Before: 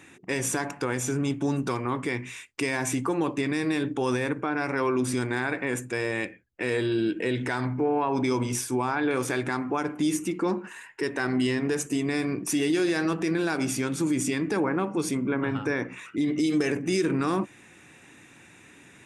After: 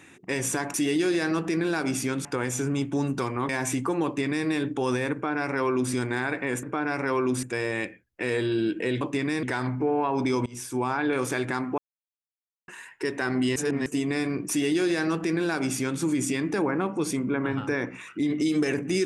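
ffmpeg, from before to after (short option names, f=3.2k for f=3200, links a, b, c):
-filter_complex "[0:a]asplit=13[a][b][c][d][e][f][g][h][i][j][k][l][m];[a]atrim=end=0.742[n];[b]atrim=start=12.478:end=13.992[o];[c]atrim=start=0.738:end=1.982[p];[d]atrim=start=2.688:end=5.832[q];[e]atrim=start=4.328:end=5.132[r];[f]atrim=start=5.828:end=7.412[s];[g]atrim=start=3.248:end=3.672[t];[h]atrim=start=7.408:end=8.44,asetpts=PTS-STARTPTS,afade=t=out:st=1.028:d=0.004:c=hsin:silence=0.0794328[u];[i]atrim=start=8.44:end=9.76,asetpts=PTS-STARTPTS,afade=t=in:d=0.37:silence=0.0794328,afade=t=out:st=1.316:d=0.004:c=hsin[v];[j]atrim=start=9.76:end=10.66,asetpts=PTS-STARTPTS,volume=0[w];[k]atrim=start=10.66:end=11.542,asetpts=PTS-STARTPTS,afade=t=in:d=0.004:c=hsin[x];[l]atrim=start=11.538:end=11.842,asetpts=PTS-STARTPTS,areverse[y];[m]atrim=start=11.838[z];[n][o]acrossfade=d=0.004:c1=hsin:c2=hsin[aa];[aa][p]acrossfade=d=0.004:c1=hsin:c2=hsin[ab];[ab][q]acrossfade=d=0.004:c1=hsin:c2=hsin[ac];[ac][r]acrossfade=d=0.004:c1=hsin:c2=hsin[ad];[ad][s]acrossfade=d=0.004:c1=hsin:c2=hsin[ae];[ae][t]acrossfade=d=0.004:c1=hsin:c2=hsin[af];[u][v][w][x]concat=n=4:v=0:a=1[ag];[af][ag]acrossfade=d=0.004:c1=hsin:c2=hsin[ah];[ah][y]acrossfade=d=0.004:c1=hsin:c2=hsin[ai];[ai][z]acrossfade=d=0.004:c1=hsin:c2=hsin"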